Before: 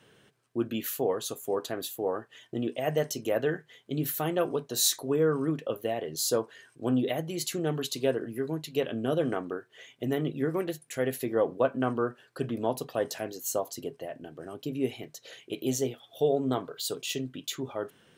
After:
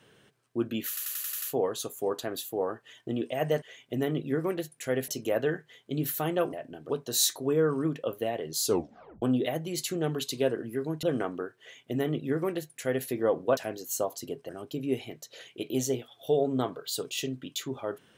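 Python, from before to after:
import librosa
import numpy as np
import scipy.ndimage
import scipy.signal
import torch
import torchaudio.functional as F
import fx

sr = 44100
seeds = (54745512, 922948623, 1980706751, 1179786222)

y = fx.edit(x, sr, fx.stutter(start_s=0.88, slice_s=0.09, count=7),
    fx.tape_stop(start_s=6.28, length_s=0.57),
    fx.cut(start_s=8.66, length_s=0.49),
    fx.duplicate(start_s=9.72, length_s=1.46, to_s=3.08),
    fx.cut(start_s=11.69, length_s=1.43),
    fx.move(start_s=14.04, length_s=0.37, to_s=4.53), tone=tone)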